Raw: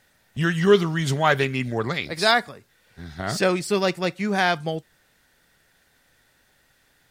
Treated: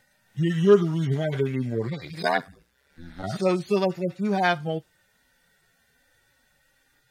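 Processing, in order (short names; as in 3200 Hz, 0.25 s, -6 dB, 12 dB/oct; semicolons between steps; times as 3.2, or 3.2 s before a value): median-filter separation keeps harmonic; 2.22–3.22 ring modulator 38 Hz -> 100 Hz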